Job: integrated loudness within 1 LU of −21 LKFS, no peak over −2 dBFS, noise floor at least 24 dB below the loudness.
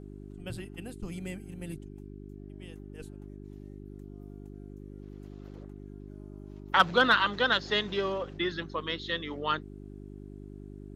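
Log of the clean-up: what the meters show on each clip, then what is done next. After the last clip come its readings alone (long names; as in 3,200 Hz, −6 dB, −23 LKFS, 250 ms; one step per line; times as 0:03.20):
mains hum 50 Hz; hum harmonics up to 400 Hz; level of the hum −43 dBFS; integrated loudness −29.5 LKFS; sample peak −9.0 dBFS; target loudness −21.0 LKFS
→ hum removal 50 Hz, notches 8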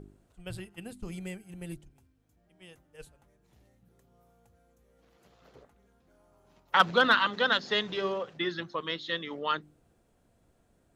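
mains hum none found; integrated loudness −29.0 LKFS; sample peak −9.0 dBFS; target loudness −21.0 LKFS
→ level +8 dB
brickwall limiter −2 dBFS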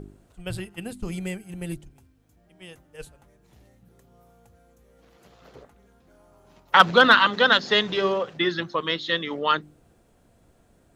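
integrated loudness −21.0 LKFS; sample peak −2.0 dBFS; background noise floor −61 dBFS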